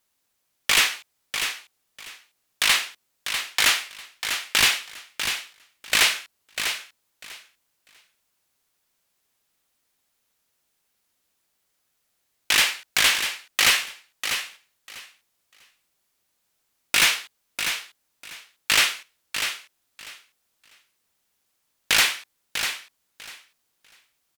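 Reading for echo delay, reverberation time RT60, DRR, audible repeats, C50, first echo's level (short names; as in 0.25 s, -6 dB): 0.646 s, none, none, 2, none, -8.0 dB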